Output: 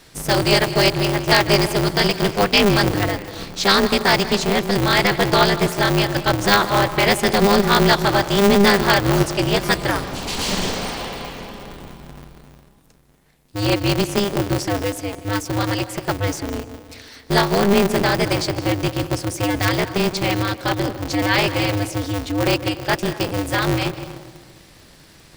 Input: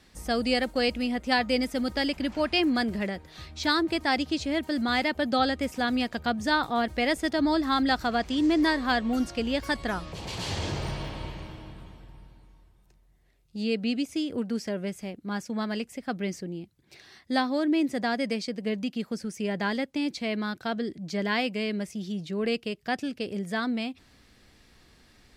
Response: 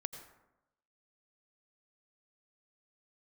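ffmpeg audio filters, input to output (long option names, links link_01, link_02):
-filter_complex "[0:a]crystalizer=i=1:c=0,asettb=1/sr,asplit=3[link_01][link_02][link_03];[link_01]atrim=end=10.704[link_04];[link_02]atrim=start=10.7:end=11.83,asetpts=PTS-STARTPTS,afade=type=in:duration=0.004:curve=qsin,afade=type=out:start_time=1.126:duration=0.004:curve=qsin,acrossover=split=240[link_05][link_06];[link_05]acompressor=threshold=-44dB:ratio=6[link_07];[link_07][link_06]amix=inputs=2:normalize=0[link_08];[link_03]atrim=start=11.826[link_09];[link_04][link_08]acrossfade=duration=0.004:curve1=hsin:curve2=qsin[link_10];[link_10][link_09]acrossfade=duration=0.004:curve1=qsin:curve2=hsin,asplit=2[link_11][link_12];[1:a]atrim=start_sample=2205,asetrate=24696,aresample=44100[link_13];[link_12][link_13]afir=irnorm=-1:irlink=0,volume=-1dB[link_14];[link_11][link_14]amix=inputs=2:normalize=0,aeval=exprs='val(0)*sgn(sin(2*PI*100*n/s))':channel_layout=same,volume=3dB"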